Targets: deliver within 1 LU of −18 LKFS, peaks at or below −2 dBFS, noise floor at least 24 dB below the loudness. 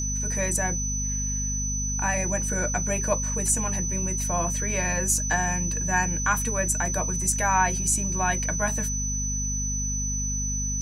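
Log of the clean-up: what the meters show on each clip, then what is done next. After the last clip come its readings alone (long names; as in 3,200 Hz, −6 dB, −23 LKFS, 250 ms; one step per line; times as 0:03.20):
mains hum 50 Hz; hum harmonics up to 250 Hz; level of the hum −28 dBFS; interfering tone 6,000 Hz; level of the tone −28 dBFS; integrated loudness −25.0 LKFS; sample peak −9.0 dBFS; target loudness −18.0 LKFS
→ hum removal 50 Hz, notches 5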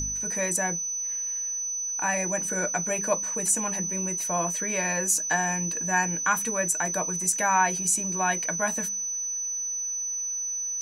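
mains hum none found; interfering tone 6,000 Hz; level of the tone −28 dBFS
→ notch filter 6,000 Hz, Q 30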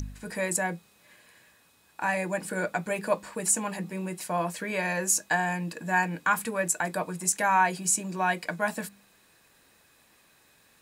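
interfering tone none found; integrated loudness −28.0 LKFS; sample peak −11.0 dBFS; target loudness −18.0 LKFS
→ level +10 dB
brickwall limiter −2 dBFS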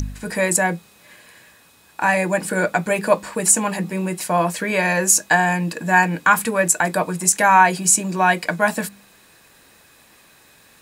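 integrated loudness −18.0 LKFS; sample peak −2.0 dBFS; background noise floor −52 dBFS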